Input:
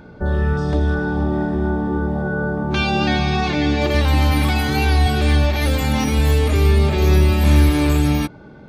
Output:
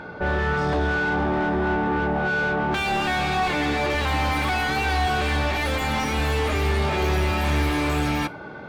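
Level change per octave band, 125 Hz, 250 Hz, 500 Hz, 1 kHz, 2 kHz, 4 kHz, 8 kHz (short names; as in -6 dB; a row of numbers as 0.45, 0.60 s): -9.5, -7.0, -3.5, +1.0, +1.5, -3.5, -4.5 dB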